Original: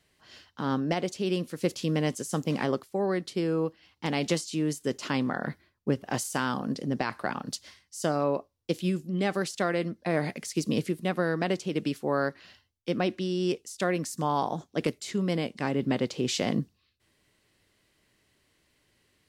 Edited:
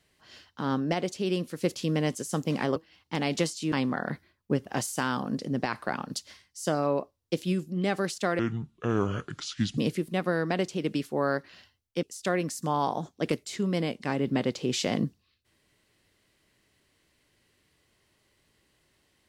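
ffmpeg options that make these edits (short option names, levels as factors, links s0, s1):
-filter_complex "[0:a]asplit=6[s0][s1][s2][s3][s4][s5];[s0]atrim=end=2.762[s6];[s1]atrim=start=3.668:end=4.632[s7];[s2]atrim=start=5.088:end=9.764[s8];[s3]atrim=start=9.76:end=10.69,asetpts=PTS-STARTPTS,asetrate=29547,aresample=44100,atrim=end_sample=61213,asetpts=PTS-STARTPTS[s9];[s4]atrim=start=10.686:end=12.942[s10];[s5]atrim=start=13.578[s11];[s6][s7]acrossfade=d=0.004:c1=hsin:c2=hsin[s12];[s12][s8]acrossfade=d=0.004:c1=hsin:c2=hsin[s13];[s13][s9]acrossfade=d=0.004:c1=hsin:c2=hsin[s14];[s14][s10]acrossfade=d=0.004:c1=hsin:c2=hsin[s15];[s15][s11]acrossfade=d=0.004:c1=hsin:c2=hsin"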